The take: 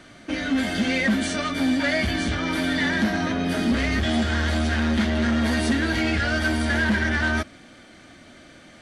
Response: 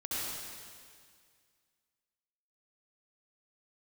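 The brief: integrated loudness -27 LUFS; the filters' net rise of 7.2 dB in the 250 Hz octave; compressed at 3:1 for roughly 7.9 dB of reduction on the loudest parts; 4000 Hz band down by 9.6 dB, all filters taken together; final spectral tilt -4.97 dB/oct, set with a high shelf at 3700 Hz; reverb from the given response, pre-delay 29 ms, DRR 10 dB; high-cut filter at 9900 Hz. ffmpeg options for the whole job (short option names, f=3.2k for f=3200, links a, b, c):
-filter_complex "[0:a]lowpass=9.9k,equalizer=f=250:t=o:g=8,highshelf=f=3.7k:g=-7.5,equalizer=f=4k:t=o:g=-8,acompressor=threshold=-22dB:ratio=3,asplit=2[a][b];[1:a]atrim=start_sample=2205,adelay=29[c];[b][c]afir=irnorm=-1:irlink=0,volume=-14.5dB[d];[a][d]amix=inputs=2:normalize=0,volume=-3dB"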